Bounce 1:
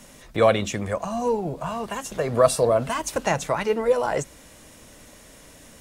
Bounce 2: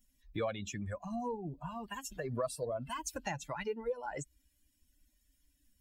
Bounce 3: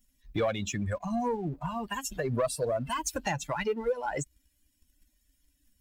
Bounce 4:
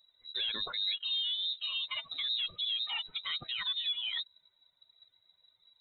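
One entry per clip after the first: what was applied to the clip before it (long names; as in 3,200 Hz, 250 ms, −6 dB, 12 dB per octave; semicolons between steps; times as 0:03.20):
spectral dynamics exaggerated over time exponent 2; downward compressor 3 to 1, threshold −36 dBFS, peak gain reduction 16.5 dB; level −1.5 dB
leveller curve on the samples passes 1; level +4.5 dB
brickwall limiter −28 dBFS, peak gain reduction 8.5 dB; voice inversion scrambler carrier 3,900 Hz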